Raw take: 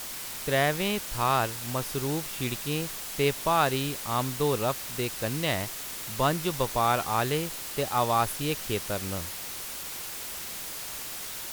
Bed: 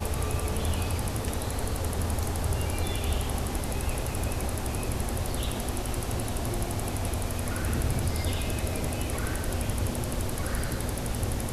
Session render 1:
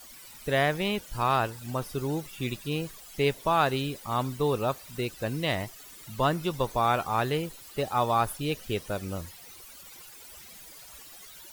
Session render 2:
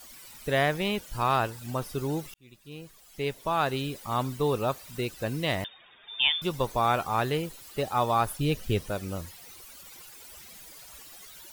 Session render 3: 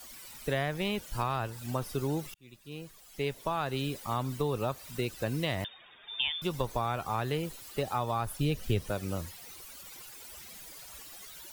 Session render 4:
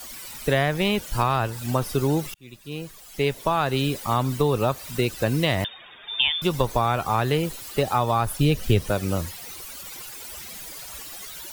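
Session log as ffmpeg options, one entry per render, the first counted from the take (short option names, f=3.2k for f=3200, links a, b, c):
-af "afftdn=nr=15:nf=-38"
-filter_complex "[0:a]asettb=1/sr,asplit=3[a][b][c];[a]atrim=end=5.644[d];[b]atrim=start=5.64:end=6.42,asetpts=PTS-STARTPTS,afade=t=in:d=0.004:c=qsin,afade=t=out:st=0.776:d=0.004:c=qsin,lowpass=f=3.1k:t=q:w=0.5098,lowpass=f=3.1k:t=q:w=0.6013,lowpass=f=3.1k:t=q:w=0.9,lowpass=f=3.1k:t=q:w=2.563,afreqshift=-3700[e];[c]atrim=start=6.416[f];[d][e]acrossfade=d=0.004:c1=hsin:c2=qsin[g];[g][f]acrossfade=d=0.004:c1=qsin:c2=hsin,asettb=1/sr,asplit=3[h][i][j];[h]atrim=end=8.394[k];[i]atrim=start=8.39:end=8.89,asetpts=PTS-STARTPTS,afade=t=in:d=0.004:c=qsin,afade=t=out:st=0.496:d=0.004:c=qsin,lowshelf=f=180:g=10.5[l];[j]atrim=start=8.886[m];[k][l]acrossfade=d=0.004:c1=hsin:c2=qsin[n];[n][m]acrossfade=d=0.004:c1=qsin:c2=hsin,asplit=2[o][p];[o]atrim=end=2.34,asetpts=PTS-STARTPTS,afade=t=out:st=2.336:d=0.004:c=hsin[q];[p]atrim=start=2.34,asetpts=PTS-STARTPTS,afade=t=in:d=1.71[r];[q][r]concat=n=2:v=0:a=1"
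-filter_complex "[0:a]acrossover=split=140[a][b];[b]acompressor=threshold=-28dB:ratio=6[c];[a][c]amix=inputs=2:normalize=0"
-af "volume=9.5dB"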